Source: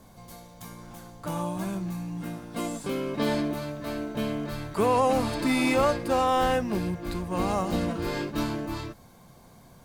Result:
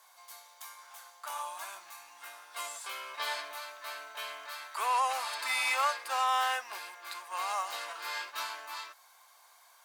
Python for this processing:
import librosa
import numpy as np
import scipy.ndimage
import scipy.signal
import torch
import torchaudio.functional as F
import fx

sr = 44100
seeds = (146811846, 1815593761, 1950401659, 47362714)

y = scipy.signal.sosfilt(scipy.signal.butter(4, 910.0, 'highpass', fs=sr, output='sos'), x)